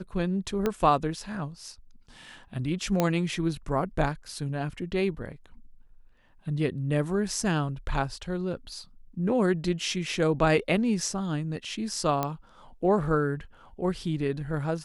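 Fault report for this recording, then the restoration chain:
0.66 s: pop -13 dBFS
3.00 s: pop -10 dBFS
12.23 s: pop -13 dBFS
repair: de-click

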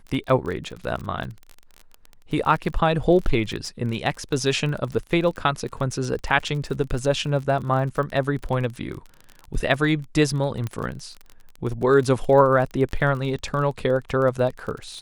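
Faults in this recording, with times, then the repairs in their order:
crackle 33 per s -30 dBFS
10.67 s: pop -16 dBFS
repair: de-click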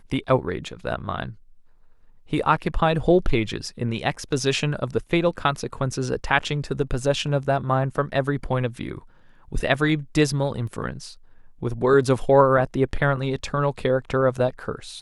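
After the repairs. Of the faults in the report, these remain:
10.67 s: pop

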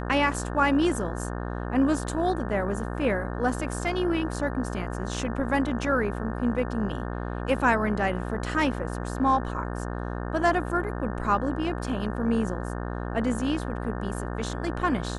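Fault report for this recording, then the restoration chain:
buzz 60 Hz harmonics 30 -32 dBFS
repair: de-hum 60 Hz, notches 30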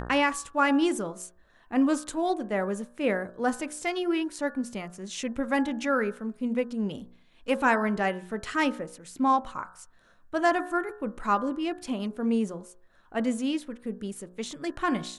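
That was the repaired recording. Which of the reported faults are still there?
nothing left

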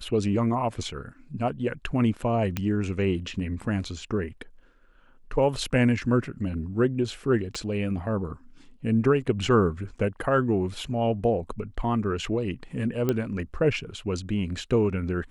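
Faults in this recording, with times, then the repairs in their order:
2.57 s: pop -13 dBFS
7.55 s: pop
13.09 s: pop -12 dBFS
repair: de-click

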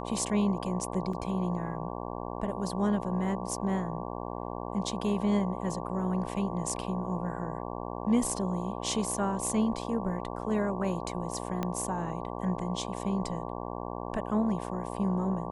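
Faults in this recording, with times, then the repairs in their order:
buzz 60 Hz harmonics 19 -37 dBFS
1.13 s: dropout 4 ms
11.63 s: pop -18 dBFS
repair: de-click; de-hum 60 Hz, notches 19; interpolate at 1.13 s, 4 ms

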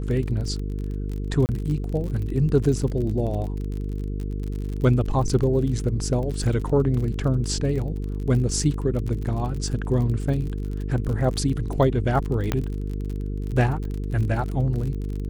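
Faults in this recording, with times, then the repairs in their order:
buzz 50 Hz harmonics 9 -28 dBFS
crackle 45 per s -30 dBFS
1.46–1.49 s: dropout 29 ms
12.52 s: pop -9 dBFS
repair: de-click; de-hum 50 Hz, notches 9; interpolate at 1.46 s, 29 ms

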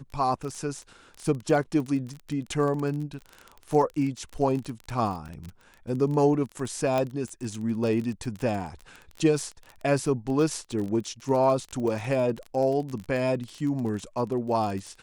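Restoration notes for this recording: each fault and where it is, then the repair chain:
crackle 23 per s -31 dBFS
5.28–5.29 s: dropout 8 ms
6.98 s: pop -14 dBFS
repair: de-click; interpolate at 5.28 s, 8 ms

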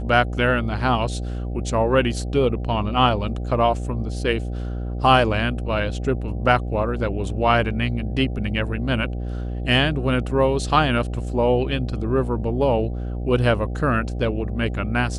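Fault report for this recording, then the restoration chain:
buzz 60 Hz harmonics 13 -27 dBFS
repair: de-hum 60 Hz, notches 13

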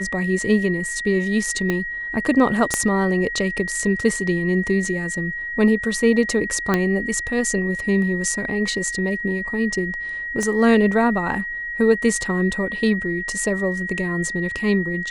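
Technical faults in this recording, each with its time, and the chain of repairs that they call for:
whine 1.9 kHz -26 dBFS
1.70 s: pop -9 dBFS
2.74 s: pop -4 dBFS
6.74 s: pop -6 dBFS
10.43 s: pop -13 dBFS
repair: de-click; band-stop 1.9 kHz, Q 30

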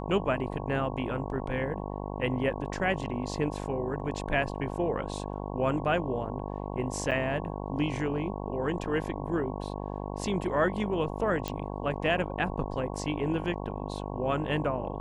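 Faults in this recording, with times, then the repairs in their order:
buzz 50 Hz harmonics 22 -36 dBFS
7.11–7.12 s: dropout 7.4 ms
11.48 s: pop -17 dBFS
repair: de-click; de-hum 50 Hz, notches 22; interpolate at 7.11 s, 7.4 ms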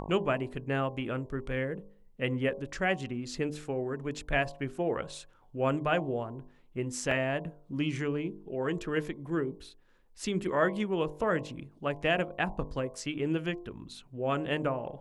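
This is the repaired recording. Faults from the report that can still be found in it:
nothing left

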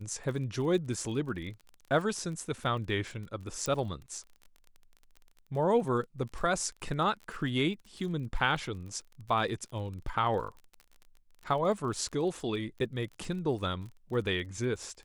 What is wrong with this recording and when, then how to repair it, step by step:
crackle 29 per s -40 dBFS
3.66 s: pop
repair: de-click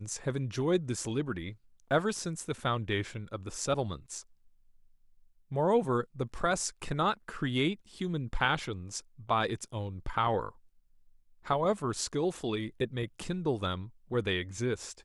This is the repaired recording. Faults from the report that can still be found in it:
nothing left

